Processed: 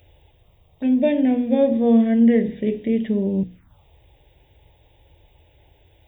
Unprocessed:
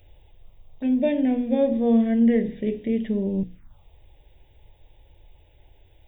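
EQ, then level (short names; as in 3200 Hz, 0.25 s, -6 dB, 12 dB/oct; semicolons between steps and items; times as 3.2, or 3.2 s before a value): HPF 60 Hz 12 dB/oct; +3.5 dB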